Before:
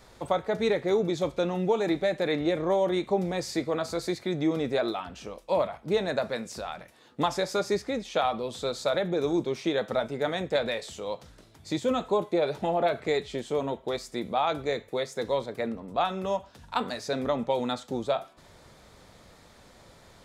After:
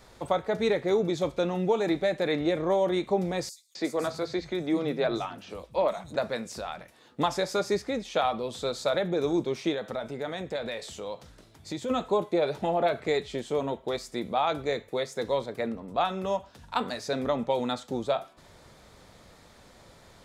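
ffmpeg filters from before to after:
-filter_complex "[0:a]asettb=1/sr,asplit=3[a][b][c];[a]atrim=end=3.494[d];[b]atrim=start=3.49:end=6.16,asetpts=PTS-STARTPTS,afade=t=in:d=0.004:c=qsin,afade=t=out:st=2.666:d=0.004:c=qsin,acrossover=split=170|5700[e][f][g];[f]adelay=260[h];[e]adelay=470[i];[i][h][g]amix=inputs=3:normalize=0,atrim=end_sample=117747[j];[c]atrim=start=6.156[k];[d][j]acrossfade=d=0.004:c1=hsin:c2=qsin[l];[l][k]acrossfade=d=0.004:c1=qsin:c2=hsin,asettb=1/sr,asplit=3[m][n][o];[m]atrim=end=9.744[p];[n]atrim=start=9.74:end=11.9,asetpts=PTS-STARTPTS,afade=t=in:d=0.004:c=qsin,afade=t=out:st=2.156:d=0.004:c=qsin,acompressor=threshold=-33dB:ratio=2:attack=3.2:release=140:knee=1:detection=peak[q];[o]atrim=start=11.896[r];[p][q]acrossfade=d=0.004:c1=hsin:c2=qsin[s];[s][r]acrossfade=d=0.004:c1=qsin:c2=hsin"

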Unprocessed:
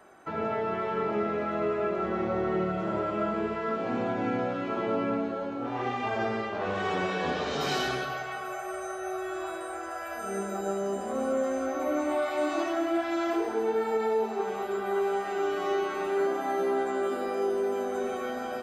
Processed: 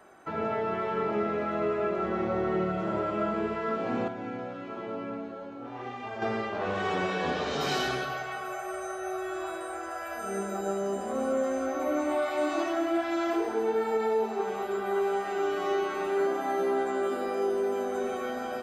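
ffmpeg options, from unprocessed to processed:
-filter_complex "[0:a]asplit=3[a][b][c];[a]atrim=end=4.082[d];[b]atrim=start=4.078:end=6.222,asetpts=PTS-STARTPTS,volume=-7.5dB[e];[c]atrim=start=6.218[f];[d][e]acrossfade=d=0.004:c1=hsin:c2=hsin[g];[g][f]acrossfade=d=0.004:c1=hsin:c2=hsin"

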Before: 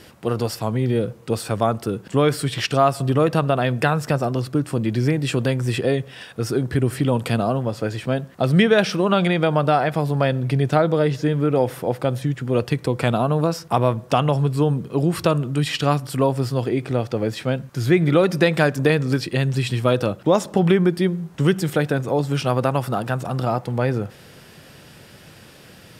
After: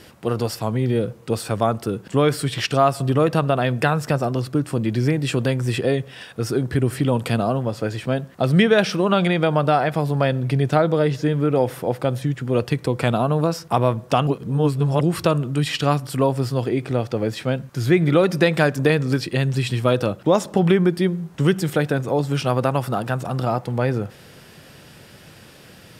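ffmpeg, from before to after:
-filter_complex "[0:a]asplit=3[a][b][c];[a]atrim=end=14.272[d];[b]atrim=start=14.268:end=15.012,asetpts=PTS-STARTPTS,areverse[e];[c]atrim=start=15.008[f];[d][e]acrossfade=d=0.004:c1=hsin:c2=hsin[g];[g][f]acrossfade=d=0.004:c1=hsin:c2=hsin"

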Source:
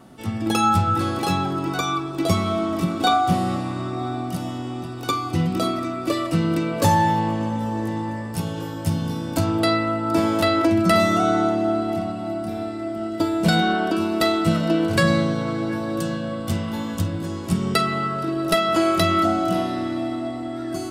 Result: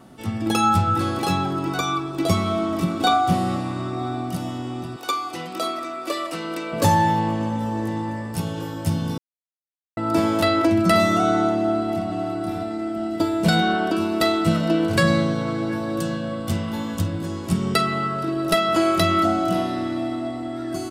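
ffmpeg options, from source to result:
-filter_complex "[0:a]asettb=1/sr,asplit=3[a][b][c];[a]atrim=end=4.964[d];[b]atrim=start=4.96:end=6.73,asetpts=PTS-STARTPTS,afade=t=in:d=0.004:c=qsin,afade=t=out:st=1.766:d=0.004:c=qsin,highpass=480[e];[c]atrim=start=6.726[f];[d][e]acrossfade=d=0.004:c1=hsin:c2=qsin[g];[g][f]acrossfade=d=0.004:c1=qsin:c2=hsin,asplit=2[h][i];[i]afade=t=in:st=11.52:d=0.01,afade=t=out:st=12.04:d=0.01,aecho=0:1:590|1180|1770|2360|2950:0.473151|0.212918|0.0958131|0.0431159|0.0194022[j];[h][j]amix=inputs=2:normalize=0,asplit=3[k][l][m];[k]atrim=end=9.18,asetpts=PTS-STARTPTS,afade=t=out:st=9.176:d=0.004:c=hsin[n];[l]atrim=start=9.18:end=9.97,asetpts=PTS-STARTPTS,volume=0[o];[m]atrim=start=9.97,asetpts=PTS-STARTPTS,afade=t=in:d=0.004:c=hsin[p];[n][o][p]concat=n=3:v=0:a=1"

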